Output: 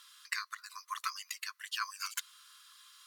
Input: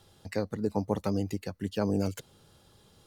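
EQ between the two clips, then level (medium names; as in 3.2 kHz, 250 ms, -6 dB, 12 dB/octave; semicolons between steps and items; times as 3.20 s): brick-wall FIR high-pass 1 kHz; +7.0 dB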